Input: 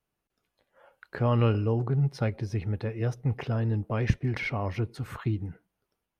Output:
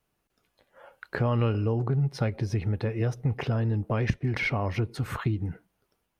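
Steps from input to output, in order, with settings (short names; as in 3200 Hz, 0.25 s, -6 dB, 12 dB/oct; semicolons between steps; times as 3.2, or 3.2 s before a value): compressor 3:1, threshold -31 dBFS, peak gain reduction 11 dB; gain +6.5 dB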